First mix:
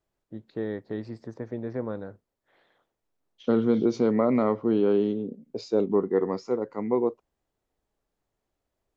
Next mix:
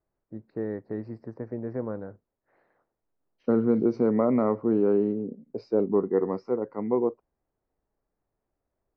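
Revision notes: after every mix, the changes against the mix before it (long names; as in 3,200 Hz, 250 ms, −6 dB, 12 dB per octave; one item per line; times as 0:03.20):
master: add moving average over 13 samples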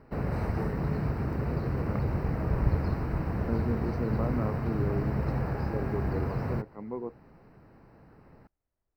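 second voice −3.5 dB
background: unmuted
master: add parametric band 470 Hz −9 dB 2.9 octaves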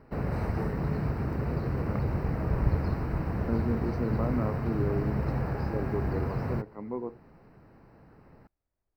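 reverb: on, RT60 0.40 s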